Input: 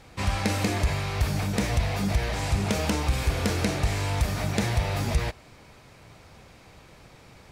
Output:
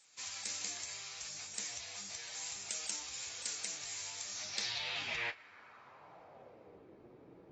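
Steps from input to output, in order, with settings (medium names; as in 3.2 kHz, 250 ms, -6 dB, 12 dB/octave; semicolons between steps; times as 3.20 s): flange 0.81 Hz, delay 5.8 ms, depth 5 ms, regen -38%; band-pass sweep 7.5 kHz -> 350 Hz, 4.22–6.89 s; trim +6 dB; AAC 24 kbps 24 kHz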